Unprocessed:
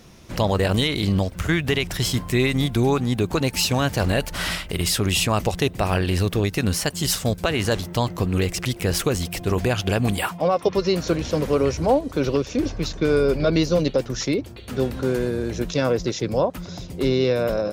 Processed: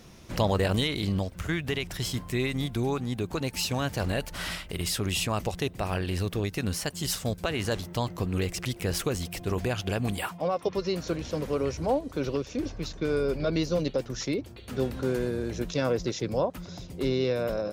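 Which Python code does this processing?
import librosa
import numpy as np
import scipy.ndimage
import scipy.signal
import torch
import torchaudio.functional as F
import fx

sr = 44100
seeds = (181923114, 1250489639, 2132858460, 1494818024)

y = fx.rider(x, sr, range_db=10, speed_s=2.0)
y = F.gain(torch.from_numpy(y), -8.0).numpy()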